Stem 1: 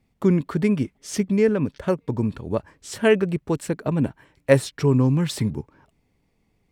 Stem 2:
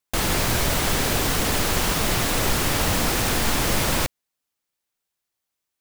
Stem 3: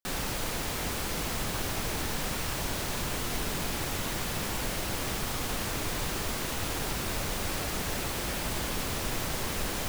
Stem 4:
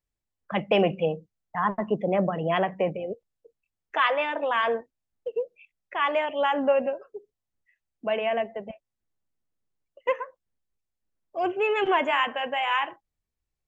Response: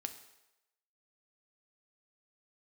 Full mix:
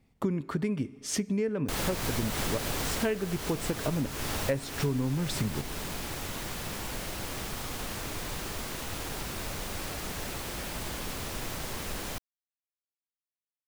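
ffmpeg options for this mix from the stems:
-filter_complex "[0:a]volume=0.75,asplit=2[s0][s1];[s1]volume=0.596[s2];[1:a]adelay=1550,volume=0.531,afade=t=out:st=2.59:d=0.55:silence=0.398107,asplit=2[s3][s4];[s4]volume=0.422[s5];[2:a]adelay=2300,volume=0.631[s6];[4:a]atrim=start_sample=2205[s7];[s2][s5]amix=inputs=2:normalize=0[s8];[s8][s7]afir=irnorm=-1:irlink=0[s9];[s0][s3][s6][s9]amix=inputs=4:normalize=0,acompressor=threshold=0.0447:ratio=6"

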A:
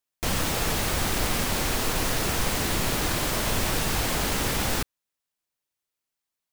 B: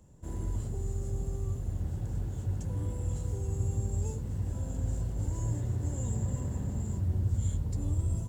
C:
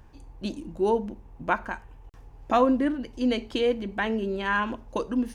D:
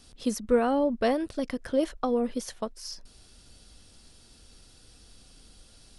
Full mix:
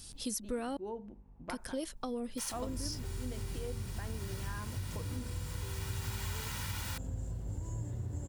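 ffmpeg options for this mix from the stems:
-filter_complex "[0:a]highpass=f=830:w=0.5412,highpass=f=830:w=1.3066,aecho=1:1:2.1:0.57,adelay=2150,volume=0.422[s0];[1:a]adelay=2300,volume=1[s1];[2:a]highshelf=f=2400:g=-9.5,aeval=exprs='val(0)+0.00501*(sin(2*PI*50*n/s)+sin(2*PI*2*50*n/s)/2+sin(2*PI*3*50*n/s)/3+sin(2*PI*4*50*n/s)/4+sin(2*PI*5*50*n/s)/5)':c=same,volume=0.251,asplit=2[s2][s3];[3:a]lowshelf=f=360:g=12,crystalizer=i=9:c=0,volume=0.282,asplit=3[s4][s5][s6];[s4]atrim=end=0.77,asetpts=PTS-STARTPTS,afade=t=out:st=0.766:d=0.004:c=hsin[s7];[s5]atrim=start=0.77:end=1.49,asetpts=PTS-STARTPTS,volume=0[s8];[s6]atrim=start=1.49,asetpts=PTS-STARTPTS,afade=t=in:d=0.004:c=hsin[s9];[s7][s8][s9]concat=n=3:v=0:a=1[s10];[s3]apad=whole_len=382848[s11];[s0][s11]sidechaincompress=threshold=0.00631:ratio=8:attack=5.2:release=1220[s12];[s12][s1][s2][s10]amix=inputs=4:normalize=0,acompressor=threshold=0.00891:ratio=2"

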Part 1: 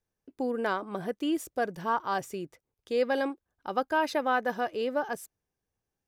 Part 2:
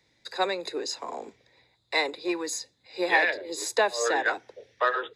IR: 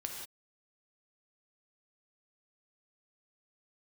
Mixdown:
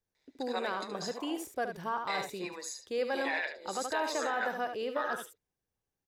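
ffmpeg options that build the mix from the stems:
-filter_complex "[0:a]acrossover=split=490[s0][s1];[s0]acompressor=threshold=0.00794:ratio=1.5[s2];[s2][s1]amix=inputs=2:normalize=0,volume=0.668,asplit=2[s3][s4];[s4]volume=0.398[s5];[1:a]highpass=510,tremolo=f=140:d=0.462,adelay=150,volume=0.473,asplit=2[s6][s7];[s7]volume=0.316[s8];[s5][s8]amix=inputs=2:normalize=0,aecho=0:1:73:1[s9];[s3][s6][s9]amix=inputs=3:normalize=0,alimiter=limit=0.0708:level=0:latency=1:release=23"

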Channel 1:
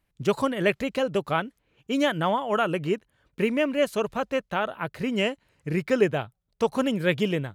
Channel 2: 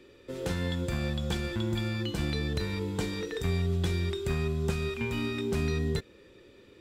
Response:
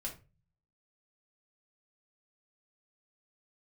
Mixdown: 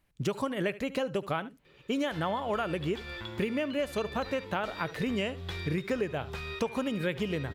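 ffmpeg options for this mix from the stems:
-filter_complex "[0:a]volume=1.19,asplit=3[s0][s1][s2];[s1]volume=0.0891[s3];[s2]volume=0.106[s4];[1:a]equalizer=f=125:t=o:w=1:g=-7,equalizer=f=250:t=o:w=1:g=-10,equalizer=f=1000:t=o:w=1:g=5,equalizer=f=2000:t=o:w=1:g=5,equalizer=f=4000:t=o:w=1:g=5,equalizer=f=8000:t=o:w=1:g=-8,adelay=1650,volume=0.531[s5];[2:a]atrim=start_sample=2205[s6];[s3][s6]afir=irnorm=-1:irlink=0[s7];[s4]aecho=0:1:72:1[s8];[s0][s5][s7][s8]amix=inputs=4:normalize=0,acompressor=threshold=0.0398:ratio=6"

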